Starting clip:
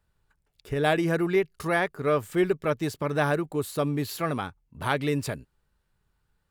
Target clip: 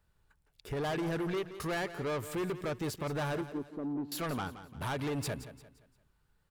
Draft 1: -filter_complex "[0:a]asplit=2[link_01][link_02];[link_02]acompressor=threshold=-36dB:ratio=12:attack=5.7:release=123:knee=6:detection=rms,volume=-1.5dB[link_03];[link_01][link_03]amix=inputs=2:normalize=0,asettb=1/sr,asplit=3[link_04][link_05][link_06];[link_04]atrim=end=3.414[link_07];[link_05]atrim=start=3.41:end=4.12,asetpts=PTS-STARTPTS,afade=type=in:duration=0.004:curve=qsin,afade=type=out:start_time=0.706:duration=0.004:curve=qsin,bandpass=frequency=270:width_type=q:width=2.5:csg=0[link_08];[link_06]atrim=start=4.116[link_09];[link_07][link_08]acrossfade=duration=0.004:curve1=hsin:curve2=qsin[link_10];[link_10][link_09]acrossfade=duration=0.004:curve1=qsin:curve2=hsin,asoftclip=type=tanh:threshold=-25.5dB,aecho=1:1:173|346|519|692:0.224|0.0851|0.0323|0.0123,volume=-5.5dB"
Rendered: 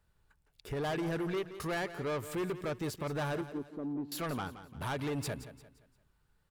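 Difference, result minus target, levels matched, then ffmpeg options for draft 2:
downward compressor: peak gain reduction +9 dB
-filter_complex "[0:a]asplit=2[link_01][link_02];[link_02]acompressor=threshold=-26dB:ratio=12:attack=5.7:release=123:knee=6:detection=rms,volume=-1.5dB[link_03];[link_01][link_03]amix=inputs=2:normalize=0,asettb=1/sr,asplit=3[link_04][link_05][link_06];[link_04]atrim=end=3.414[link_07];[link_05]atrim=start=3.41:end=4.12,asetpts=PTS-STARTPTS,afade=type=in:duration=0.004:curve=qsin,afade=type=out:start_time=0.706:duration=0.004:curve=qsin,bandpass=frequency=270:width_type=q:width=2.5:csg=0[link_08];[link_06]atrim=start=4.116[link_09];[link_07][link_08]acrossfade=duration=0.004:curve1=hsin:curve2=qsin[link_10];[link_10][link_09]acrossfade=duration=0.004:curve1=qsin:curve2=hsin,asoftclip=type=tanh:threshold=-25.5dB,aecho=1:1:173|346|519|692:0.224|0.0851|0.0323|0.0123,volume=-5.5dB"

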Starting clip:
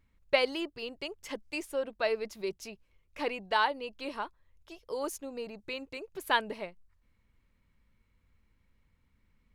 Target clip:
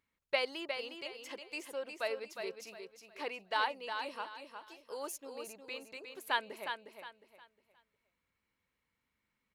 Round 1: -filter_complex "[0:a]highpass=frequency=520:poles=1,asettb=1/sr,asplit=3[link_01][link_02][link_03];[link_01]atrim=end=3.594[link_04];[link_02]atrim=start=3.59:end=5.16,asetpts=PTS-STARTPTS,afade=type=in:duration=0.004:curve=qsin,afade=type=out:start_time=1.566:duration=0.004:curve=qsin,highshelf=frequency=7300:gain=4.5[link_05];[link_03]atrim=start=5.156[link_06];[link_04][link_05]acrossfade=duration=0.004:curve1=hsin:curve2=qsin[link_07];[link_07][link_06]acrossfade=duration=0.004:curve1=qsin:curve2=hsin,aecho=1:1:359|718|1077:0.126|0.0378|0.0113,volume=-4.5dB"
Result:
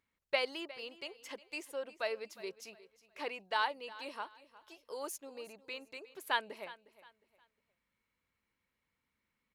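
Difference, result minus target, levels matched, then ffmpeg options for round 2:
echo-to-direct −11 dB
-filter_complex "[0:a]highpass=frequency=520:poles=1,asettb=1/sr,asplit=3[link_01][link_02][link_03];[link_01]atrim=end=3.594[link_04];[link_02]atrim=start=3.59:end=5.16,asetpts=PTS-STARTPTS,afade=type=in:duration=0.004:curve=qsin,afade=type=out:start_time=1.566:duration=0.004:curve=qsin,highshelf=frequency=7300:gain=4.5[link_05];[link_03]atrim=start=5.156[link_06];[link_04][link_05]acrossfade=duration=0.004:curve1=hsin:curve2=qsin[link_07];[link_07][link_06]acrossfade=duration=0.004:curve1=qsin:curve2=hsin,aecho=1:1:359|718|1077|1436:0.447|0.134|0.0402|0.0121,volume=-4.5dB"

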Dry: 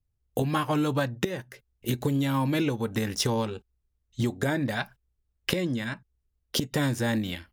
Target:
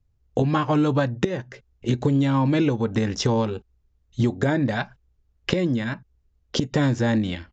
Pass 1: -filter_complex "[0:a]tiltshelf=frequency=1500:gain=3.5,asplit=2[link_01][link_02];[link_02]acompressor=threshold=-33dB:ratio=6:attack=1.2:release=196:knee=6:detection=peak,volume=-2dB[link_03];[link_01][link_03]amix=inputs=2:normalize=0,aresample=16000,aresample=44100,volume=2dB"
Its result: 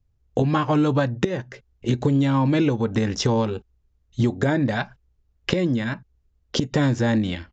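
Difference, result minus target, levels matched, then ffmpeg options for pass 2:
downward compressor: peak gain reduction −7 dB
-filter_complex "[0:a]tiltshelf=frequency=1500:gain=3.5,asplit=2[link_01][link_02];[link_02]acompressor=threshold=-41.5dB:ratio=6:attack=1.2:release=196:knee=6:detection=peak,volume=-2dB[link_03];[link_01][link_03]amix=inputs=2:normalize=0,aresample=16000,aresample=44100,volume=2dB"

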